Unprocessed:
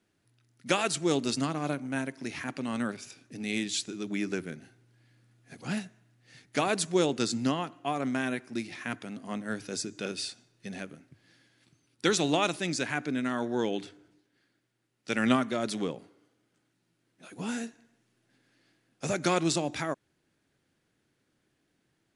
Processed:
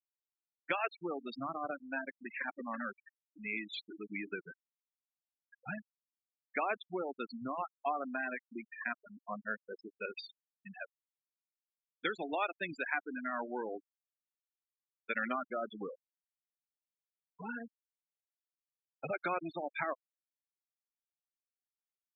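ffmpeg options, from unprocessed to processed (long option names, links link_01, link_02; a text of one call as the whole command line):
ffmpeg -i in.wav -filter_complex "[0:a]asplit=2[link_01][link_02];[link_02]afade=type=in:start_time=2.06:duration=0.01,afade=type=out:start_time=2.48:duration=0.01,aecho=0:1:330|660|990|1320|1650|1980|2310:0.530884|0.291986|0.160593|0.0883259|0.0485792|0.0267186|0.0146952[link_03];[link_01][link_03]amix=inputs=2:normalize=0,acompressor=threshold=-30dB:ratio=3,acrossover=split=580 3200:gain=0.224 1 0.251[link_04][link_05][link_06];[link_04][link_05][link_06]amix=inputs=3:normalize=0,afftfilt=real='re*gte(hypot(re,im),0.0251)':imag='im*gte(hypot(re,im),0.0251)':win_size=1024:overlap=0.75,volume=3dB" out.wav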